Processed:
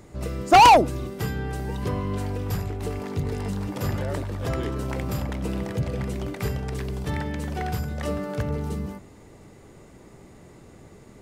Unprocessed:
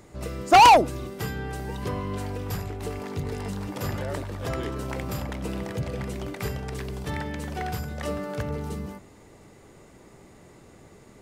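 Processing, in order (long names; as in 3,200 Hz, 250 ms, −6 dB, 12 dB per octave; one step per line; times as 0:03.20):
low-shelf EQ 360 Hz +4.5 dB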